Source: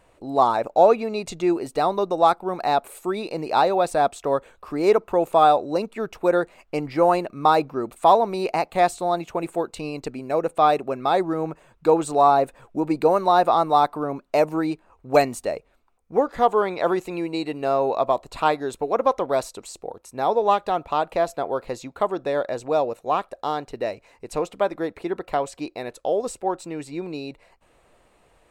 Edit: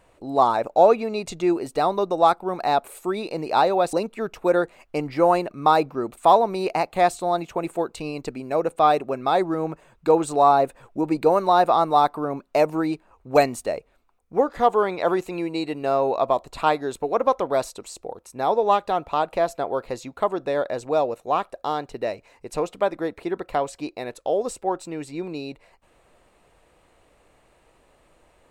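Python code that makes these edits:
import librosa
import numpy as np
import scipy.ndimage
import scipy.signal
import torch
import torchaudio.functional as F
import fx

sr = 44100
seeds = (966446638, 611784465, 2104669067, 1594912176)

y = fx.edit(x, sr, fx.cut(start_s=3.93, length_s=1.79), tone=tone)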